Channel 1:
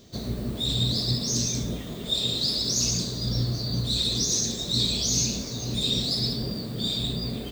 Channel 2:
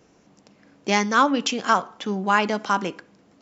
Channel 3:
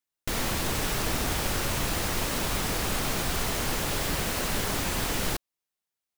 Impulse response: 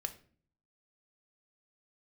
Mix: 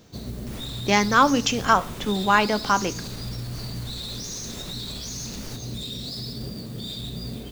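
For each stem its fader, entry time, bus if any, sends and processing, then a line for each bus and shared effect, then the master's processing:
-4.5 dB, 0.00 s, bus A, no send, modulation noise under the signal 16 dB
+1.0 dB, 0.00 s, no bus, no send, none
-12.5 dB, 0.20 s, bus A, no send, none
bus A: 0.0 dB, bass shelf 200 Hz +4.5 dB; peak limiter -24.5 dBFS, peak gain reduction 8.5 dB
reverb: none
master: none

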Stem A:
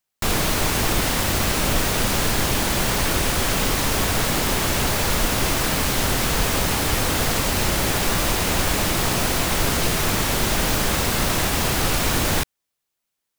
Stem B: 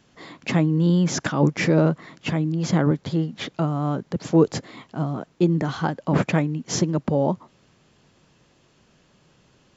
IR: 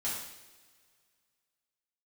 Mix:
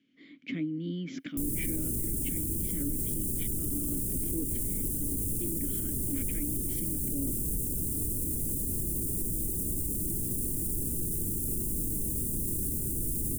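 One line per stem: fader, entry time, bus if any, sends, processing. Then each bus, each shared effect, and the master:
-5.0 dB, 1.15 s, no send, Chebyshev band-stop 340–9000 Hz, order 3; treble shelf 6.1 kHz +6 dB
-1.0 dB, 0.00 s, no send, vowel filter i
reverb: none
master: peak limiter -22 dBFS, peak gain reduction 9.5 dB

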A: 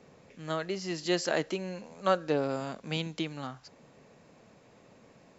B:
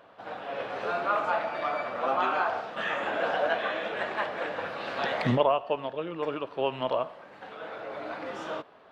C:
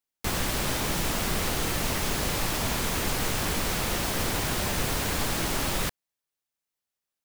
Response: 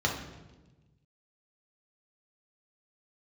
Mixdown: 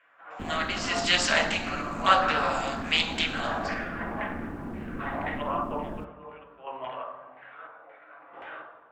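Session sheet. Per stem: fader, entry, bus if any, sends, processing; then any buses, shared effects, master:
-4.5 dB, 0.00 s, send -6.5 dB, high-pass 770 Hz 24 dB/octave; gate with hold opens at -52 dBFS; level rider gain up to 11 dB
0.0 dB, 0.00 s, send -7 dB, low-pass 2.6 kHz 12 dB/octave; square tremolo 0.6 Hz, depth 65%, duty 60%; LFO band-pass saw down 1.9 Hz 760–2000 Hz
-11.0 dB, 0.15 s, send -22 dB, FFT filter 150 Hz 0 dB, 230 Hz +13 dB, 3.5 kHz -29 dB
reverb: on, RT60 1.2 s, pre-delay 3 ms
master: treble shelf 4.5 kHz +5 dB; loudspeaker Doppler distortion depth 0.18 ms

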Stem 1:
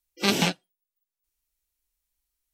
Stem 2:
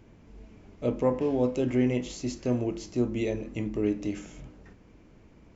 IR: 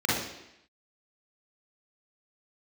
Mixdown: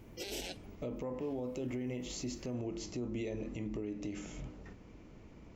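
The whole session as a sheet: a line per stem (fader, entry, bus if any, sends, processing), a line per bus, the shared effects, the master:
-3.0 dB, 0.00 s, no send, compressor with a negative ratio -31 dBFS, ratio -1; static phaser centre 480 Hz, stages 4
+0.5 dB, 0.00 s, no send, band-stop 1.6 kHz, Q 14; compression 2.5:1, threshold -35 dBFS, peak gain reduction 10.5 dB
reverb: none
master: peak limiter -30.5 dBFS, peak gain reduction 9 dB

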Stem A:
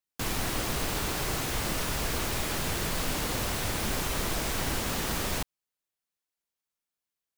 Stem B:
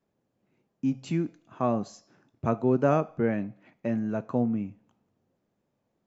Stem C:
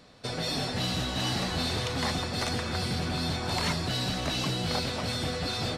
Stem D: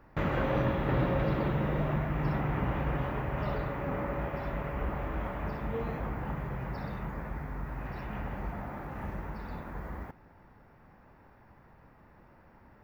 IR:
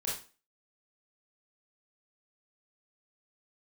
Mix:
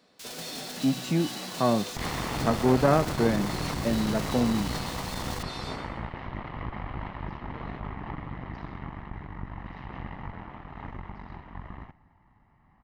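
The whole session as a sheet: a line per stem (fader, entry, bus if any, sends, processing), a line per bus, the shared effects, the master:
-19.5 dB, 0.00 s, no send, no echo send, formants flattened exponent 0.1; peaking EQ 4.5 kHz +11.5 dB 2.4 oct
+3.0 dB, 0.00 s, no send, no echo send, none
-8.0 dB, 0.00 s, no send, echo send -8.5 dB, steep high-pass 160 Hz 36 dB/octave
-7.0 dB, 1.80 s, no send, echo send -22.5 dB, Chebyshev low-pass 3.5 kHz; comb 1 ms, depth 69%; Chebyshev shaper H 6 -7 dB, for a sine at -15.5 dBFS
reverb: none
echo: feedback delay 118 ms, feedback 37%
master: transformer saturation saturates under 480 Hz

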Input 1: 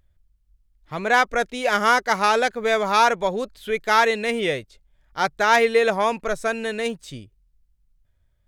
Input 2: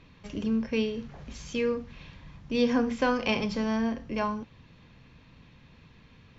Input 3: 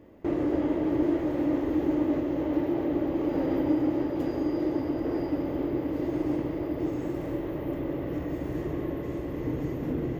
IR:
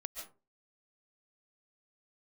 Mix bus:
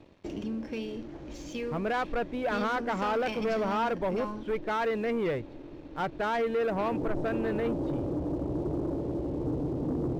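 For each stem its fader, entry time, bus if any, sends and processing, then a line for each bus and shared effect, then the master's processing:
-12.5 dB, 0.80 s, bus A, no send, tilt EQ -2 dB/octave
-11.5 dB, 0.00 s, no bus, no send, compression, threshold -27 dBFS, peak gain reduction 8 dB
-6.0 dB, 0.00 s, bus A, no send, steep low-pass 970 Hz 72 dB/octave; peak limiter -21.5 dBFS, peak gain reduction 7 dB; auto duck -17 dB, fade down 0.45 s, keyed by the second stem
bus A: 0.0 dB, low-pass 2.2 kHz 12 dB/octave; peak limiter -25 dBFS, peak gain reduction 6.5 dB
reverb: none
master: waveshaping leveller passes 2

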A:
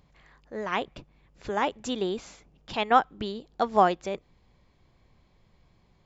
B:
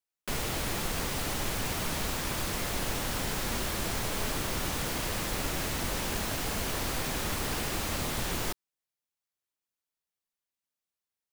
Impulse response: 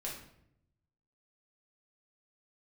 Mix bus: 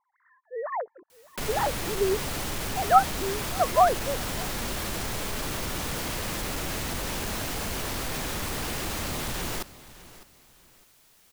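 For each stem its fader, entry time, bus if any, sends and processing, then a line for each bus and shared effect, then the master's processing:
+1.5 dB, 0.00 s, no send, echo send -23 dB, formants replaced by sine waves; elliptic low-pass 1.8 kHz, stop band 40 dB
+1.0 dB, 1.10 s, no send, echo send -17.5 dB, saturation -25.5 dBFS, distortion -18 dB; level flattener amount 50%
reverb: none
echo: feedback delay 605 ms, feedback 27%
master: none

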